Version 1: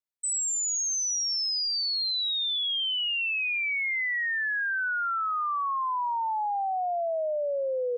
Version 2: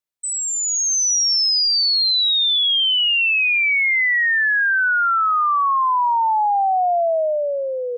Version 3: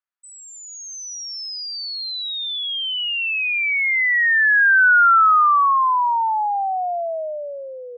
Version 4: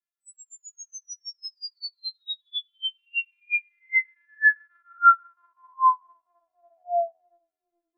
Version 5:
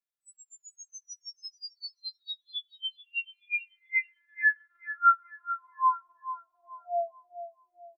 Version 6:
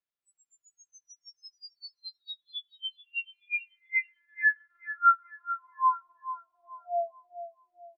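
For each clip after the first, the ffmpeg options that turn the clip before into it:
ffmpeg -i in.wav -af "dynaudnorm=framelen=120:gausssize=13:maxgain=7dB,volume=4dB" out.wav
ffmpeg -i in.wav -af "bandpass=frequency=1400:width_type=q:width=2.2:csg=0,volume=5dB" out.wav
ffmpeg -i in.wav -af "afftfilt=real='re*4*eq(mod(b,16),0)':imag='im*4*eq(mod(b,16),0)':win_size=2048:overlap=0.75,volume=-6.5dB" out.wav
ffmpeg -i in.wav -filter_complex "[0:a]asplit=2[link_01][link_02];[link_02]adelay=435,lowpass=frequency=1800:poles=1,volume=-11dB,asplit=2[link_03][link_04];[link_04]adelay=435,lowpass=frequency=1800:poles=1,volume=0.37,asplit=2[link_05][link_06];[link_06]adelay=435,lowpass=frequency=1800:poles=1,volume=0.37,asplit=2[link_07][link_08];[link_08]adelay=435,lowpass=frequency=1800:poles=1,volume=0.37[link_09];[link_01][link_03][link_05][link_07][link_09]amix=inputs=5:normalize=0,volume=-5.5dB" out.wav
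ffmpeg -i in.wav -af "lowpass=3800" out.wav

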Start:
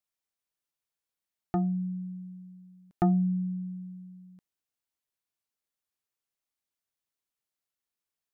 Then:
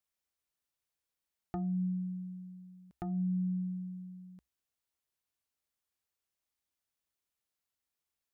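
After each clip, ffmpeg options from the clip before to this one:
ffmpeg -i in.wav -af "equalizer=frequency=63:width_type=o:width=0.4:gain=11.5,acompressor=threshold=-27dB:ratio=6,alimiter=level_in=4.5dB:limit=-24dB:level=0:latency=1:release=296,volume=-4.5dB" out.wav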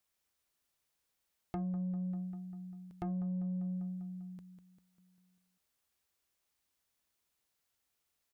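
ffmpeg -i in.wav -af "aecho=1:1:198|396|594|792|990|1188:0.355|0.192|0.103|0.0559|0.0302|0.0163,acompressor=threshold=-39dB:ratio=8,asoftclip=type=tanh:threshold=-37dB,volume=6dB" out.wav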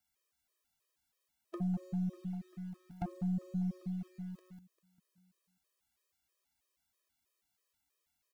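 ffmpeg -i in.wav -filter_complex "[0:a]asplit=2[link_01][link_02];[link_02]acrusher=bits=6:dc=4:mix=0:aa=0.000001,volume=-9dB[link_03];[link_01][link_03]amix=inputs=2:normalize=0,afftfilt=real='re*gt(sin(2*PI*3.1*pts/sr)*(1-2*mod(floor(b*sr/1024/330),2)),0)':imag='im*gt(sin(2*PI*3.1*pts/sr)*(1-2*mod(floor(b*sr/1024/330),2)),0)':win_size=1024:overlap=0.75,volume=2dB" out.wav

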